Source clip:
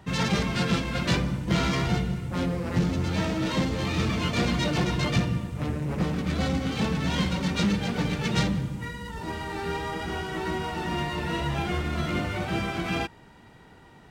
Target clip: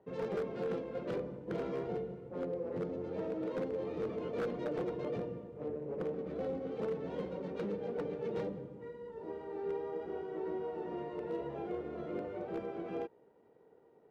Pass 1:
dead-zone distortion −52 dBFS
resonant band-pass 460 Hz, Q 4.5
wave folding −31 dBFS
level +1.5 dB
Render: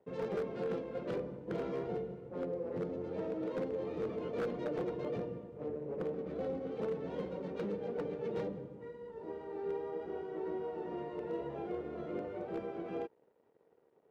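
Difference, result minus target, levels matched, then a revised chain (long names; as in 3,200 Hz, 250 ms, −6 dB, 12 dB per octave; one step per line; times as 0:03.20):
dead-zone distortion: distortion +10 dB
dead-zone distortion −62 dBFS
resonant band-pass 460 Hz, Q 4.5
wave folding −31 dBFS
level +1.5 dB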